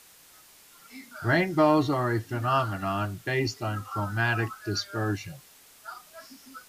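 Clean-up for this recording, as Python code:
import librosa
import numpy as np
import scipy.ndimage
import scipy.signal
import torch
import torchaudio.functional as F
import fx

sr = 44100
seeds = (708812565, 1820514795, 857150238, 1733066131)

y = fx.noise_reduce(x, sr, print_start_s=0.12, print_end_s=0.62, reduce_db=17.0)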